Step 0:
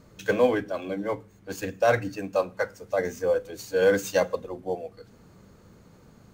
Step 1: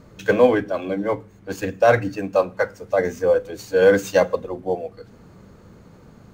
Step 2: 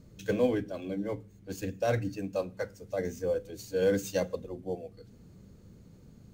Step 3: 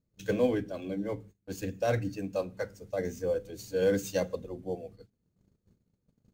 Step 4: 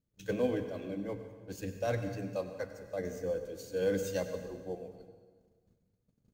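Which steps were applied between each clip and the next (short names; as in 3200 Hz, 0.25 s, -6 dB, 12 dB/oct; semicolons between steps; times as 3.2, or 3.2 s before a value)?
high shelf 3800 Hz -7 dB; gain +6.5 dB
bell 1100 Hz -14.5 dB 2.5 oct; gain -4.5 dB
gate -49 dBFS, range -25 dB
plate-style reverb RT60 1.5 s, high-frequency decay 0.85×, pre-delay 80 ms, DRR 8 dB; gain -4.5 dB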